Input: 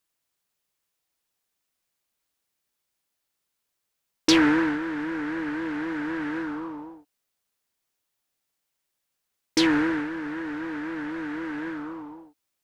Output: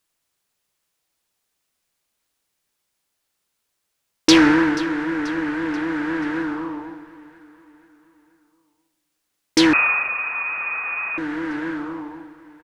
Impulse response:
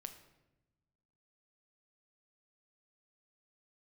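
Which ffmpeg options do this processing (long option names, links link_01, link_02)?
-filter_complex "[0:a]aecho=1:1:484|968|1452|1936:0.126|0.0617|0.0302|0.0148,asplit=2[link_01][link_02];[1:a]atrim=start_sample=2205,asetrate=22932,aresample=44100[link_03];[link_02][link_03]afir=irnorm=-1:irlink=0,volume=-1.5dB[link_04];[link_01][link_04]amix=inputs=2:normalize=0,asettb=1/sr,asplit=3[link_05][link_06][link_07];[link_05]atrim=end=9.734[link_08];[link_06]atrim=start=9.73:end=11.18,asetpts=PTS-STARTPTS,afade=type=in:duration=0.004:curve=qsin,afade=type=out:start_time=1.446:duration=0.004:curve=qsin,lowpass=frequency=2400:width_type=q:width=0.5098,lowpass=frequency=2400:width_type=q:width=0.6013,lowpass=frequency=2400:width_type=q:width=0.9,lowpass=frequency=2400:width_type=q:width=2.563,afreqshift=-2800[link_09];[link_07]atrim=start=11.176[link_10];[link_08][link_09]acrossfade=duration=0.004:curve1=hsin:curve2=qsin[link_11];[link_11][link_10]acrossfade=duration=0.004:curve1=qsin:curve2=hsin,volume=1dB"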